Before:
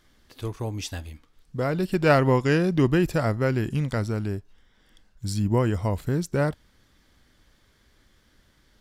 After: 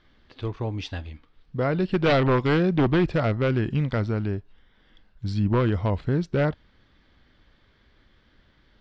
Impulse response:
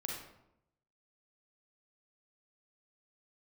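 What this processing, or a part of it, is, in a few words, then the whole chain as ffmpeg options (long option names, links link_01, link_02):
synthesiser wavefolder: -af "aeval=exprs='0.178*(abs(mod(val(0)/0.178+3,4)-2)-1)':channel_layout=same,lowpass=frequency=4100:width=0.5412,lowpass=frequency=4100:width=1.3066,volume=1.5dB"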